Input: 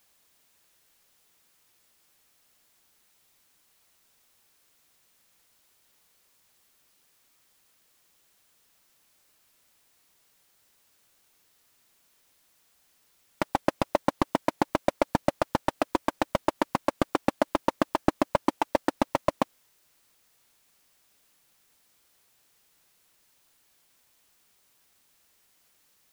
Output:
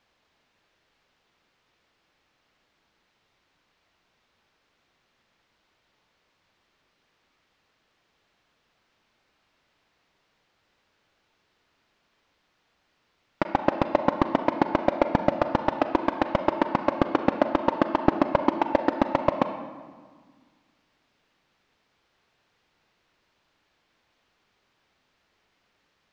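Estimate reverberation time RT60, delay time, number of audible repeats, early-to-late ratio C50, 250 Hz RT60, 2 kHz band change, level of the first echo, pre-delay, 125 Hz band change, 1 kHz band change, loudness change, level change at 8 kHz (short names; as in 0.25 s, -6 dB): 1.6 s, none, none, 8.0 dB, 2.2 s, +2.5 dB, none, 35 ms, +3.5 dB, +3.5 dB, +3.5 dB, under -10 dB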